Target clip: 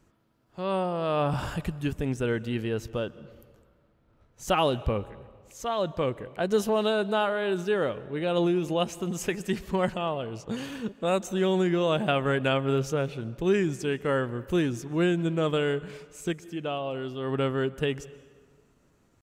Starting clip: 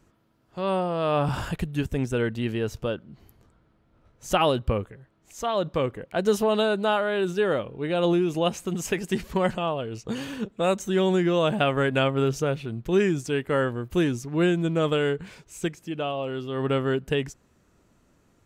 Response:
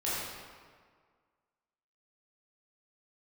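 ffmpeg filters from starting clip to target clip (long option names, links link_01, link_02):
-filter_complex "[0:a]atempo=0.96,asplit=2[link_01][link_02];[1:a]atrim=start_sample=2205,adelay=125[link_03];[link_02][link_03]afir=irnorm=-1:irlink=0,volume=-26.5dB[link_04];[link_01][link_04]amix=inputs=2:normalize=0,volume=-2.5dB"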